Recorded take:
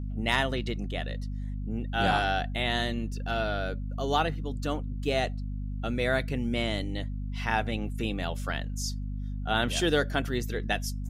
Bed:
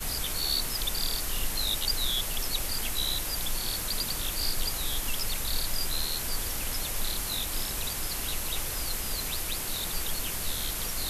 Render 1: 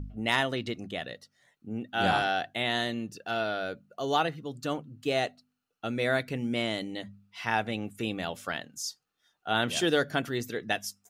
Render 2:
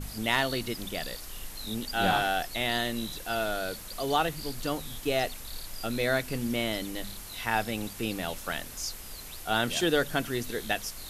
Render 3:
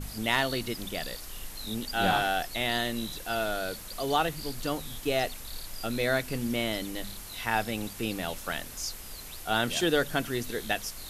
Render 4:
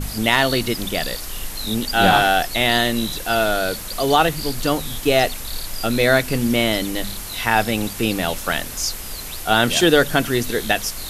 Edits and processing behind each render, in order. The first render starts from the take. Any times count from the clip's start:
de-hum 50 Hz, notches 5
add bed -10.5 dB
no audible change
trim +11.5 dB; peak limiter -2 dBFS, peak gain reduction 3 dB

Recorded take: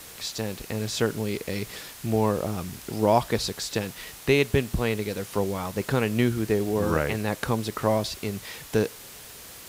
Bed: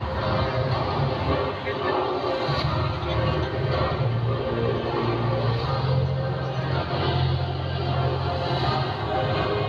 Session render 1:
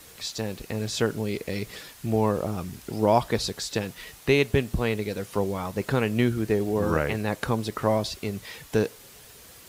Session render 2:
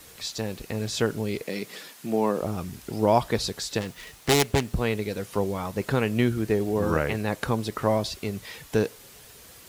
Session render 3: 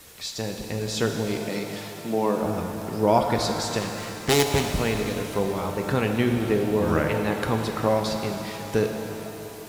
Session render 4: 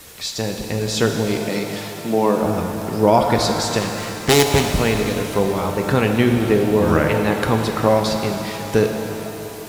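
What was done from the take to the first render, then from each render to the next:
noise reduction 6 dB, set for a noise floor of -44 dBFS
1.41–2.41 s: high-pass 170 Hz 24 dB/octave; 3.80–4.76 s: self-modulated delay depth 0.66 ms
pitch-shifted reverb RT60 3 s, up +7 st, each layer -8 dB, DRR 4 dB
trim +6.5 dB; peak limiter -2 dBFS, peak gain reduction 2.5 dB

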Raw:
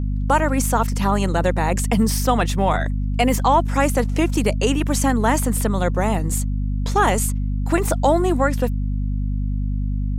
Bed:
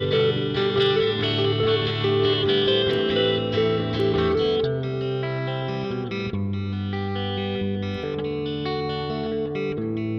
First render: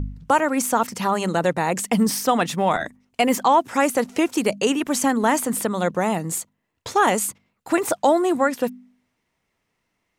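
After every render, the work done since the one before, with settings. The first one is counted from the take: de-hum 50 Hz, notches 5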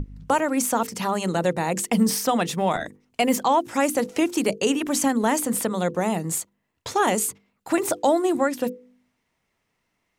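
hum notches 50/100/150/200/250/300/350/400/450/500 Hz; dynamic bell 1.3 kHz, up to -5 dB, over -30 dBFS, Q 0.7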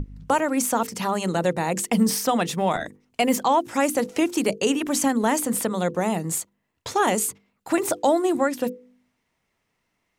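no audible change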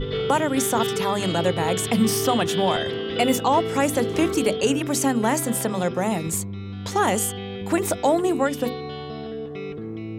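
add bed -6 dB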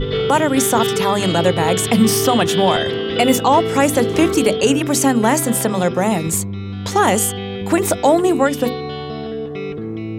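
trim +6.5 dB; peak limiter -3 dBFS, peak gain reduction 2.5 dB

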